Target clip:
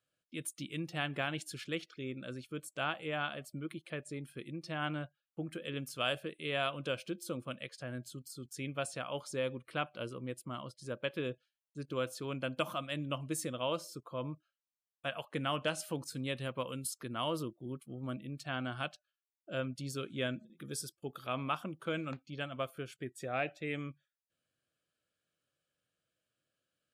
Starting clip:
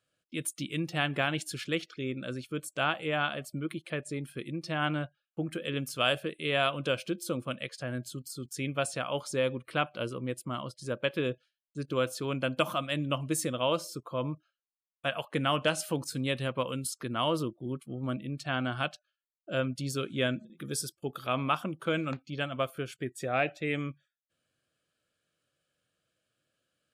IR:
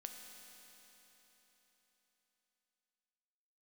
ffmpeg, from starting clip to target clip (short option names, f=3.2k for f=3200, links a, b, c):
-filter_complex "[0:a]asettb=1/sr,asplit=3[a][b][c];[a]atrim=end=16.444[d];[b]atrim=start=16.44:end=18.9,asetpts=PTS-STARTPTS,afade=t=in:d=0.004:c=qsin,afade=t=out:st=2.456:d=0.004:c=qsin,highshelf=f=11k:g=8.5[e];[c]atrim=start=18.896[f];[d][e]acrossfade=d=0.004:c1=hsin:c2=qsin[g];[g][f]acrossfade=d=0.004:c1=qsin:c2=hsin,volume=-6.5dB"